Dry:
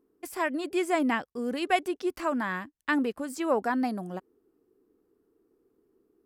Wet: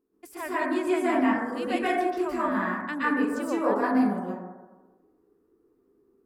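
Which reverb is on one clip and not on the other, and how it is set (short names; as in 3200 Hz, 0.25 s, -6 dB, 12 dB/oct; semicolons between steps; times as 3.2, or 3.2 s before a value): plate-style reverb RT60 1.2 s, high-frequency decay 0.25×, pre-delay 0.11 s, DRR -9 dB; gain -7.5 dB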